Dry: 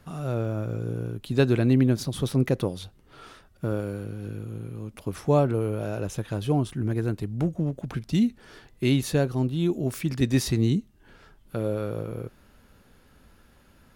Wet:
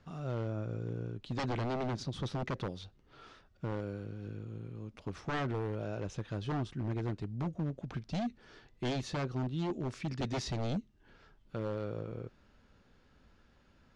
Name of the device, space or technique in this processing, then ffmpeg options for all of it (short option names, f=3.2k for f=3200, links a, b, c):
synthesiser wavefolder: -af "aeval=exprs='0.0944*(abs(mod(val(0)/0.0944+3,4)-2)-1)':c=same,lowpass=f=6.4k:w=0.5412,lowpass=f=6.4k:w=1.3066,volume=-8dB"